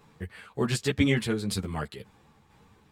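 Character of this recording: tremolo saw down 2 Hz, depth 45%; a shimmering, thickened sound

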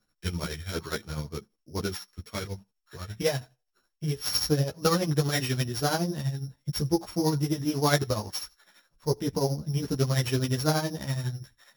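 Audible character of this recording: a buzz of ramps at a fixed pitch in blocks of 8 samples; tremolo triangle 12 Hz, depth 75%; a shimmering, thickened sound

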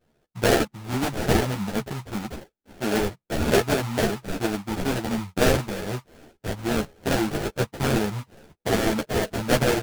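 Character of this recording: aliases and images of a low sample rate 1100 Hz, jitter 20%; a shimmering, thickened sound

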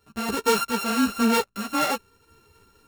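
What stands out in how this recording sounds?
a buzz of ramps at a fixed pitch in blocks of 32 samples; random-step tremolo; a shimmering, thickened sound

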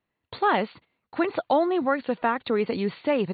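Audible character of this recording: AC-3

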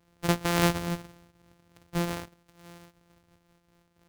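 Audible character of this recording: a buzz of ramps at a fixed pitch in blocks of 256 samples; noise-modulated level

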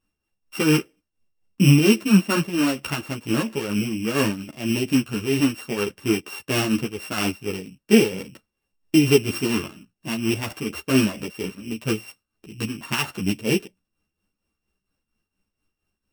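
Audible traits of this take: a buzz of ramps at a fixed pitch in blocks of 16 samples; tremolo triangle 4.3 Hz, depth 70%; a shimmering, thickened sound

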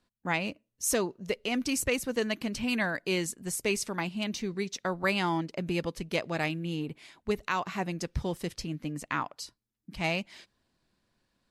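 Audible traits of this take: noise floor -82 dBFS; spectral tilt -4.0 dB/oct

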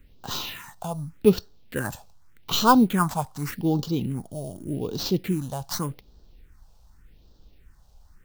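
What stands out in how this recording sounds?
aliases and images of a low sample rate 10000 Hz, jitter 0%; phasing stages 4, 0.85 Hz, lowest notch 310–2100 Hz

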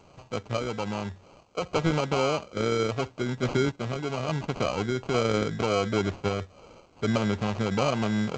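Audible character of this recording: a quantiser's noise floor 10-bit, dither triangular; random-step tremolo; aliases and images of a low sample rate 1800 Hz, jitter 0%; G.722

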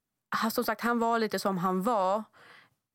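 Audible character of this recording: noise floor -87 dBFS; spectral tilt -4.0 dB/oct

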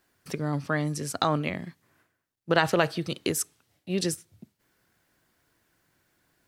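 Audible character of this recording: noise floor -78 dBFS; spectral tilt -4.5 dB/oct

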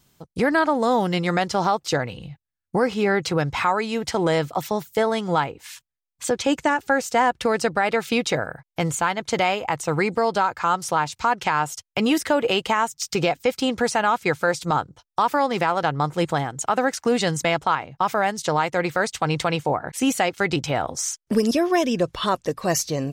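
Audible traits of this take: noise floor -85 dBFS; spectral tilt -4.5 dB/oct

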